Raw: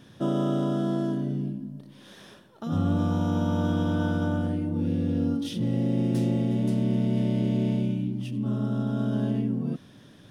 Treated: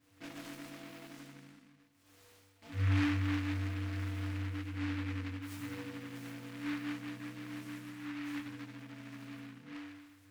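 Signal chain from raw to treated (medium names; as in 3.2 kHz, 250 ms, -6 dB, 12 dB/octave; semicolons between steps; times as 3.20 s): feedback comb 97 Hz, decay 1.4 s, harmonics odd, mix 100%; delay time shaken by noise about 1.7 kHz, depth 0.21 ms; trim +6.5 dB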